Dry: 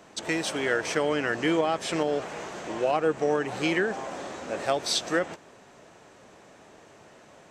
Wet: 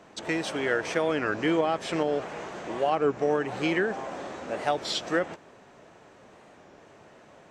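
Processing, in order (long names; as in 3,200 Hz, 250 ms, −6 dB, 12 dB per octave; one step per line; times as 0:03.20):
high-shelf EQ 5,000 Hz −9.5 dB
wow of a warped record 33 1/3 rpm, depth 160 cents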